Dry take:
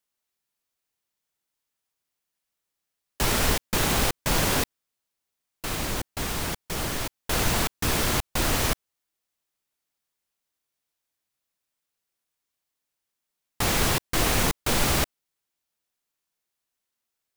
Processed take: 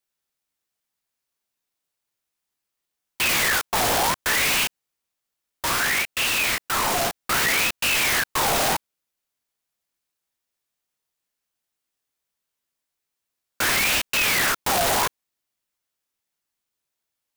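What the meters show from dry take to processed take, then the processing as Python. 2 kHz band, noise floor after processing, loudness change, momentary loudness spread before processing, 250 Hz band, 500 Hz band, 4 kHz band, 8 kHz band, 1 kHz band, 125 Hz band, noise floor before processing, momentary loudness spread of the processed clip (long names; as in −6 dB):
+8.5 dB, −83 dBFS, +4.5 dB, 8 LU, −4.0 dB, +1.5 dB, +5.0 dB, +4.0 dB, +5.5 dB, −8.0 dB, −84 dBFS, 5 LU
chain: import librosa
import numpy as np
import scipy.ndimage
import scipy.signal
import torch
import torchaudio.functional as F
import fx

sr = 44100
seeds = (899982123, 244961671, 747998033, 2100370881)

y = fx.room_early_taps(x, sr, ms=(15, 34), db=(-5.0, -5.5))
y = fx.leveller(y, sr, passes=2)
y = 10.0 ** (-22.0 / 20.0) * np.tanh(y / 10.0 ** (-22.0 / 20.0))
y = fx.ring_lfo(y, sr, carrier_hz=1700.0, swing_pct=60, hz=0.64)
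y = y * librosa.db_to_amplitude(5.5)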